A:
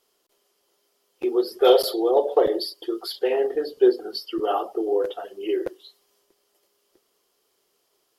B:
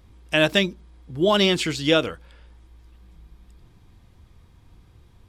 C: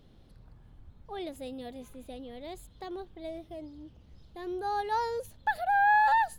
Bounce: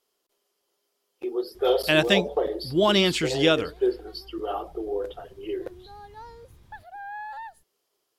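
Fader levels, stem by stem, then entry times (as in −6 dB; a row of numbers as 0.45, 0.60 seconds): −6.5, −1.5, −14.0 decibels; 0.00, 1.55, 1.25 seconds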